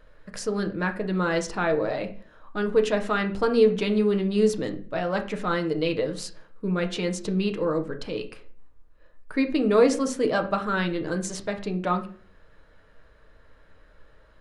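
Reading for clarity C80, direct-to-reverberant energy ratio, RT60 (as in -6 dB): 17.5 dB, 4.5 dB, 0.45 s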